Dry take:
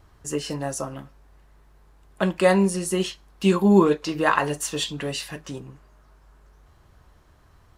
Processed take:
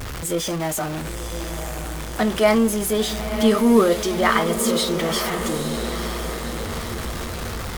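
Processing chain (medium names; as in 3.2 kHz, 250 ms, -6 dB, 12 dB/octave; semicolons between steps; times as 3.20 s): jump at every zero crossing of -25 dBFS; pitch shift +2.5 st; echo that smears into a reverb 959 ms, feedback 58%, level -8 dB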